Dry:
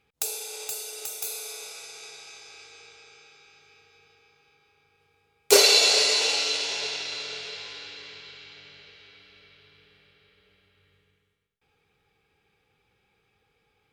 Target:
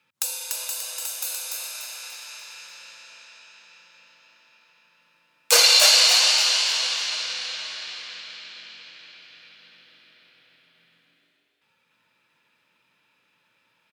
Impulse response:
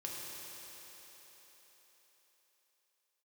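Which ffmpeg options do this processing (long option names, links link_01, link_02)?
-filter_complex "[0:a]lowshelf=frequency=780:width_type=q:width=1.5:gain=-8,asplit=6[link_01][link_02][link_03][link_04][link_05][link_06];[link_02]adelay=292,afreqshift=120,volume=-3.5dB[link_07];[link_03]adelay=584,afreqshift=240,volume=-11.7dB[link_08];[link_04]adelay=876,afreqshift=360,volume=-19.9dB[link_09];[link_05]adelay=1168,afreqshift=480,volume=-28dB[link_10];[link_06]adelay=1460,afreqshift=600,volume=-36.2dB[link_11];[link_01][link_07][link_08][link_09][link_10][link_11]amix=inputs=6:normalize=0,afreqshift=74,volume=2.5dB"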